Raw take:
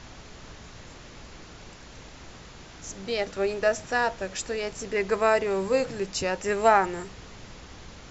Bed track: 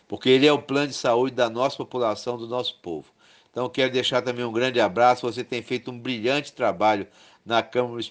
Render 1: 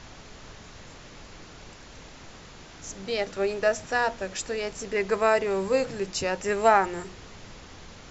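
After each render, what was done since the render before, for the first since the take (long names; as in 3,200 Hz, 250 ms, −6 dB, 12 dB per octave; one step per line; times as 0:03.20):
hum removal 60 Hz, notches 6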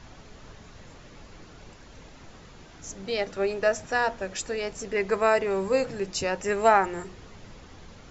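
broadband denoise 6 dB, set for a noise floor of −47 dBFS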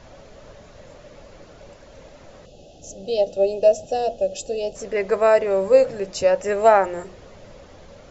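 parametric band 570 Hz +14.5 dB 0.47 octaves
0:02.45–0:04.76: gain on a spectral selection 850–2,500 Hz −21 dB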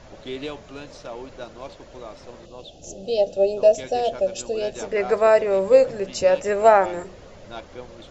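mix in bed track −15.5 dB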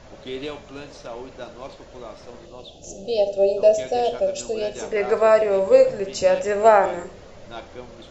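four-comb reverb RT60 0.38 s, combs from 29 ms, DRR 9.5 dB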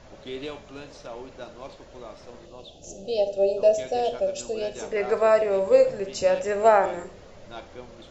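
level −3.5 dB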